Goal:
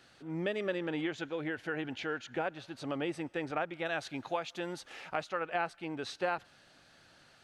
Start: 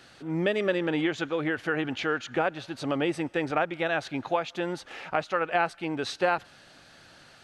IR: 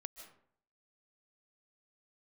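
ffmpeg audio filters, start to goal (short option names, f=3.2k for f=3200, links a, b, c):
-filter_complex "[0:a]asettb=1/sr,asplit=3[a][b][c];[a]atrim=end=1.174[d];[b]atrim=start=1.17:end=2.46,asetpts=PTS-STARTPTS,afade=t=in:d=0.004:c=qsin,afade=t=out:st=1.286:d=0.004:c=qsin,bandreject=f=1.2k:w=7.2[e];[c]atrim=start=2.456[f];[d][e]acrossfade=d=0.004:c1=hsin:c2=qsin[g];[g][f]acrossfade=d=0.004:c1=qsin:c2=hsin,asettb=1/sr,asplit=3[h][i][j];[h]atrim=end=3.854[k];[i]atrim=start=3.85:end=5.29,asetpts=PTS-STARTPTS,afade=t=in:d=0.004:c=qsin,afade=t=out:st=1.436:d=0.004:c=qsin,highshelf=f=4.1k:g=8[l];[j]atrim=start=5.286[m];[k][l]acrossfade=d=0.004:c1=hsin:c2=qsin[n];[n][m]acrossfade=d=0.004:c1=qsin:c2=hsin,volume=-8dB"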